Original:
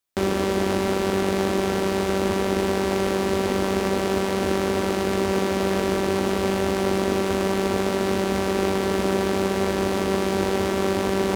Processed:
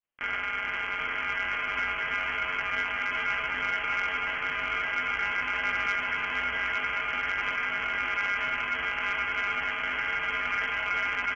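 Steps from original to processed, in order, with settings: granulator, pitch spread up and down by 0 st; peak limiter -18 dBFS, peak gain reduction 8.5 dB; on a send: bouncing-ball echo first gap 780 ms, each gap 0.85×, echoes 5; on the sum: ring modulator 1.4 kHz; frequency inversion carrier 3.2 kHz; saturation -16 dBFS, distortion -25 dB

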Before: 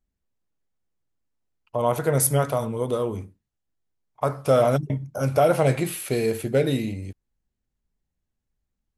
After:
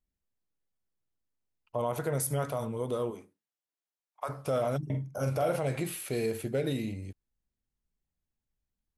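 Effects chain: 3.10–4.28 s: high-pass 290 Hz -> 820 Hz 12 dB/octave; peak limiter -15 dBFS, peak gain reduction 7 dB; 4.82–5.56 s: doubling 46 ms -6 dB; trim -6.5 dB

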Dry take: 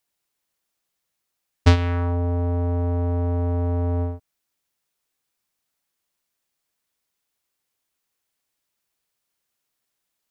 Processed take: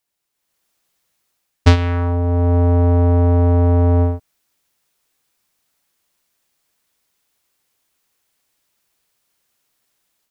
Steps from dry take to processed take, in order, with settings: level rider gain up to 9.5 dB

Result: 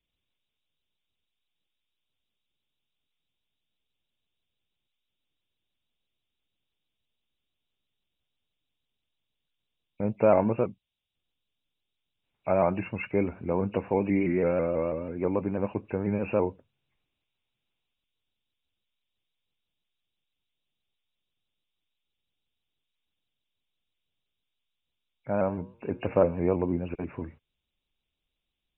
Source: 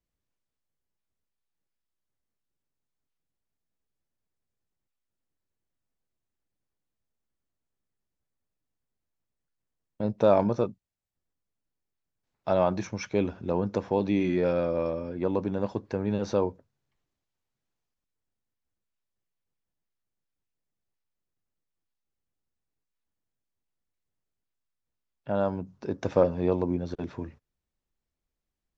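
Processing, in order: knee-point frequency compression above 2.1 kHz 4:1; 25.44–26.21 s: de-hum 119.9 Hz, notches 29; vibrato with a chosen wave saw up 6.1 Hz, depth 100 cents

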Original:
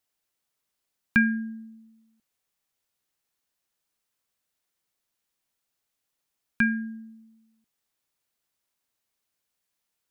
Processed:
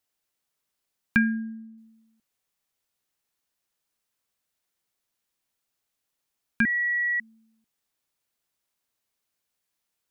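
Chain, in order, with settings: 1.17–1.78 s: treble shelf 2.5 kHz -10 dB; 6.65–7.20 s: bleep 1.93 kHz -22.5 dBFS

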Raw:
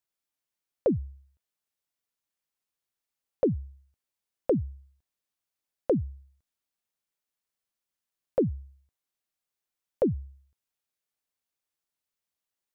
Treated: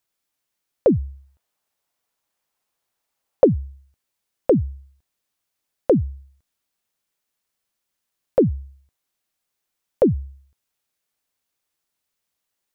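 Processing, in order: 1.08–3.45 s: peaking EQ 790 Hz +6.5 dB 1.6 oct; trim +8.5 dB

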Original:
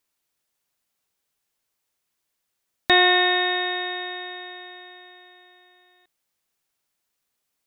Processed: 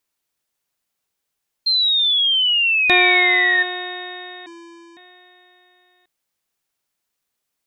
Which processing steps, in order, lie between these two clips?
1.66–3.63 s: painted sound fall 1.8–4.2 kHz -17 dBFS; 4.46–4.97 s: vocoder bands 4, square 338 Hz

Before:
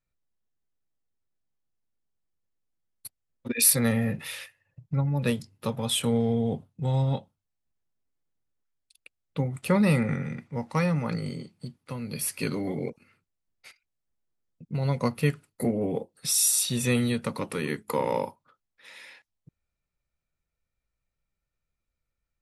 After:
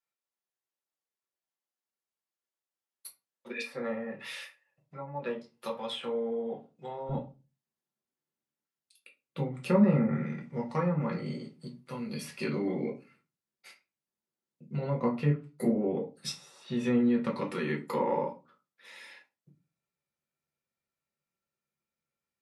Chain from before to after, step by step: low-pass that closes with the level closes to 1.2 kHz, closed at -21 dBFS; high-pass 510 Hz 12 dB/octave, from 7.09 s 180 Hz; reverberation RT60 0.30 s, pre-delay 5 ms, DRR -1.5 dB; trim -5.5 dB

